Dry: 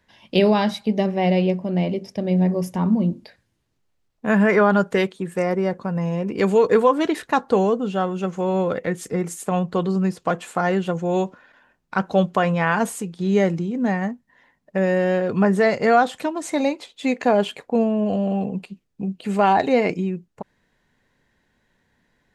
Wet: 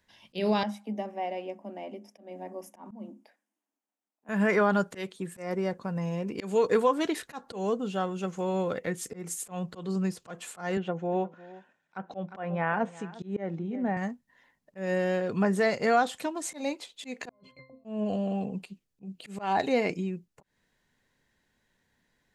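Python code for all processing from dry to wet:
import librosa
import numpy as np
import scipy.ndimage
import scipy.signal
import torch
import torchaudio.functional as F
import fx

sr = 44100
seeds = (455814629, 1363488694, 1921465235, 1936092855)

y = fx.chain(x, sr, fx.cheby_ripple_highpass(hz=200.0, ripple_db=9),
    fx.peak_eq(hz=4200.0, db=-15.0, octaves=0.41), at=(0.63, 4.29))
y = fx.chain(y, sr, fx.env_lowpass_down(base_hz=1800.0, full_db=-19.0),
    fx.cabinet(low_hz=150.0, low_slope=12, high_hz=8200.0, hz=(750.0, 1100.0, 4600.0), db=(4, -3, -6)),
    fx.echo_single(ms=354, db=-19.0), at=(10.77, 13.97))
y = fx.chain(y, sr, fx.over_compress(threshold_db=-30.0, ratio=-1.0),
    fx.low_shelf(hz=420.0, db=7.5),
    fx.octave_resonator(note='C', decay_s=0.3), at=(17.29, 17.85))
y = fx.high_shelf(y, sr, hz=3500.0, db=8.0)
y = fx.auto_swell(y, sr, attack_ms=180.0)
y = y * librosa.db_to_amplitude(-8.0)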